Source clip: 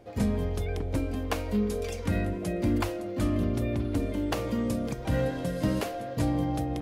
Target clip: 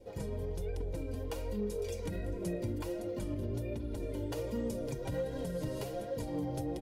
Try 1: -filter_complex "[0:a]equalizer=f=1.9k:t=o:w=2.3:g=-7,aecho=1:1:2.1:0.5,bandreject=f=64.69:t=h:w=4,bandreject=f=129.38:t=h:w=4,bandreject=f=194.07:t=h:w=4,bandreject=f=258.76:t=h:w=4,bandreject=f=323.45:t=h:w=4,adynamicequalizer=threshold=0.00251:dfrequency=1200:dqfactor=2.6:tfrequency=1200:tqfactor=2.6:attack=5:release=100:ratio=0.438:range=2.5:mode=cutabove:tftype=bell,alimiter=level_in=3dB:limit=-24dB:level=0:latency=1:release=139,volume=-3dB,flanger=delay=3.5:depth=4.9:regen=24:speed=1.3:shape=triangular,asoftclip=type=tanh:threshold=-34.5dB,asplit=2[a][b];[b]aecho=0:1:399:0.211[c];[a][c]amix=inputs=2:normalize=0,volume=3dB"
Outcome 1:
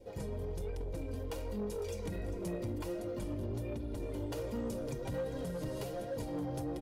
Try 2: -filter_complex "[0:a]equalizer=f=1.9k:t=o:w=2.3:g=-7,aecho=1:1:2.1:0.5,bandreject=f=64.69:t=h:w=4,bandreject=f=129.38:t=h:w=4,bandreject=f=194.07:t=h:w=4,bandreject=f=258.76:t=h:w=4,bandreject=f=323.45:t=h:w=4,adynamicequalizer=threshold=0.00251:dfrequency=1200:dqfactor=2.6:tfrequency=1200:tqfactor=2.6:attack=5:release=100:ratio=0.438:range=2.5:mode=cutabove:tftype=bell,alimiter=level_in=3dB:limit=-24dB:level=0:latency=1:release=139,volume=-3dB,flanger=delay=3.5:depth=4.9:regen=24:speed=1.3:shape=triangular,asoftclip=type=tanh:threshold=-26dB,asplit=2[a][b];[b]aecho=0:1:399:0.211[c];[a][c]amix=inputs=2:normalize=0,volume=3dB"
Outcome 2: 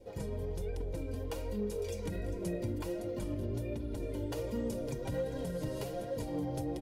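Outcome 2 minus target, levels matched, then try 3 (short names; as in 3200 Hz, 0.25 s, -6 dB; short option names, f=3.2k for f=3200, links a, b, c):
echo-to-direct +8 dB
-filter_complex "[0:a]equalizer=f=1.9k:t=o:w=2.3:g=-7,aecho=1:1:2.1:0.5,bandreject=f=64.69:t=h:w=4,bandreject=f=129.38:t=h:w=4,bandreject=f=194.07:t=h:w=4,bandreject=f=258.76:t=h:w=4,bandreject=f=323.45:t=h:w=4,adynamicequalizer=threshold=0.00251:dfrequency=1200:dqfactor=2.6:tfrequency=1200:tqfactor=2.6:attack=5:release=100:ratio=0.438:range=2.5:mode=cutabove:tftype=bell,alimiter=level_in=3dB:limit=-24dB:level=0:latency=1:release=139,volume=-3dB,flanger=delay=3.5:depth=4.9:regen=24:speed=1.3:shape=triangular,asoftclip=type=tanh:threshold=-26dB,asplit=2[a][b];[b]aecho=0:1:399:0.0841[c];[a][c]amix=inputs=2:normalize=0,volume=3dB"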